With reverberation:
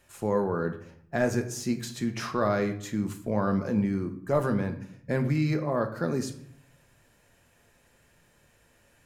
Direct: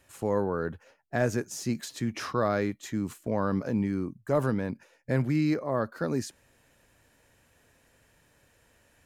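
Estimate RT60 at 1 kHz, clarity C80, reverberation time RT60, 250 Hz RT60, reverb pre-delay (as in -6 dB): 0.65 s, 14.5 dB, 0.65 s, 0.85 s, 5 ms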